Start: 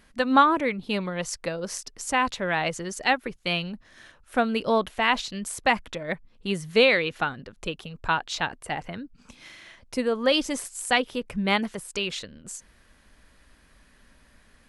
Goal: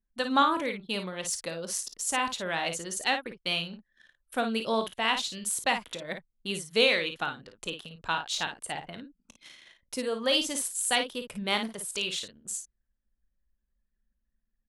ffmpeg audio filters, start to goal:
-af "lowshelf=f=100:g=-10.5,anlmdn=0.0251,aexciter=amount=1.7:drive=7.5:freq=3000,aecho=1:1:22|36|54:0.141|0.141|0.398,volume=0.501"

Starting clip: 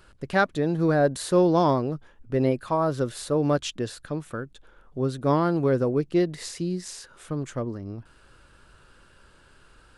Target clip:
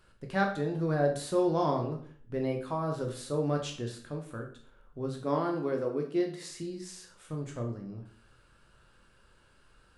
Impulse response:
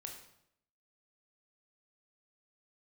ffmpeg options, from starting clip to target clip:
-filter_complex "[0:a]asettb=1/sr,asplit=3[s0][s1][s2];[s0]atrim=end=5.214[s3];[s1]atrim=start=5.21:end=6.5,asetpts=PTS-STARTPTS,afade=t=in:d=0.004:c=qsin,afade=t=out:st=1.286:d=0.004:c=qsin,highpass=f=170:w=0.5412,highpass=f=170:w=1.3066[s4];[s2]atrim=start=6.496[s5];[s3][s4]acrossfade=d=0.004:c1=hsin:c2=qsin[s6];[s6][s5]acrossfade=d=0.004:c1=qsin:c2=hsin[s7];[1:a]atrim=start_sample=2205,asetrate=66150,aresample=44100[s8];[s7][s8]afir=irnorm=-1:irlink=0"

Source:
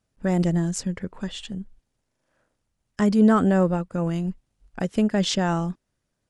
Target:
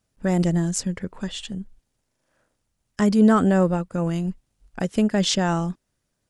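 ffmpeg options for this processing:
-af "highshelf=f=4900:g=5,volume=1.12"

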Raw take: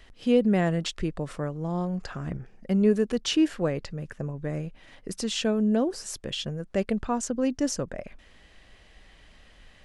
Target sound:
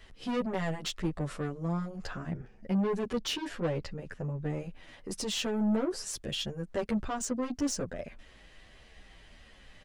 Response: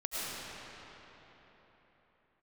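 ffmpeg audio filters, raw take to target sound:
-filter_complex "[0:a]asettb=1/sr,asplit=3[s0][s1][s2];[s0]atrim=end=2.084[s3];[s1]atrim=start=2.08:end=4.59,asetpts=PTS-STARTPTS,afade=t=in:d=0.004:c=qsin,afade=t=out:st=2.506:d=0.004:c=qsin,highshelf=f=7400:g=-8[s4];[s2]atrim=start=4.586[s5];[s3][s4]acrossfade=d=0.004:c1=hsin:c2=qsin[s6];[s6][s5]acrossfade=d=0.004:c1=qsin:c2=hsin,asoftclip=type=tanh:threshold=0.0501,asplit=2[s7][s8];[s8]adelay=10.2,afreqshift=-1.6[s9];[s7][s9]amix=inputs=2:normalize=1,volume=1.33"

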